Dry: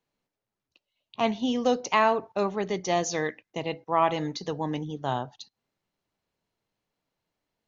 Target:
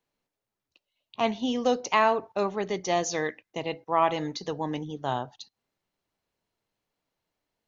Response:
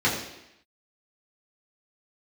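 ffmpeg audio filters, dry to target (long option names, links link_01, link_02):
-af "equalizer=frequency=160:width=1.1:gain=-3"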